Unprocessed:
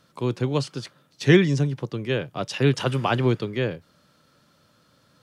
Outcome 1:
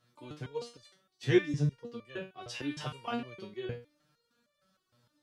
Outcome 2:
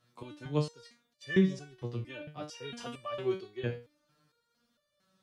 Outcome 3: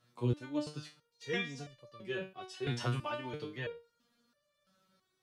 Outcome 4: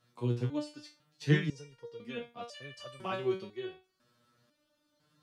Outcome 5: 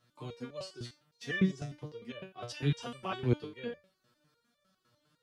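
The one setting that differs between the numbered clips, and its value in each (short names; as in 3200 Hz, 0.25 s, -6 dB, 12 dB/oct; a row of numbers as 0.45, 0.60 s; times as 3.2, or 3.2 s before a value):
stepped resonator, rate: 6.5, 4.4, 3, 2, 9.9 Hz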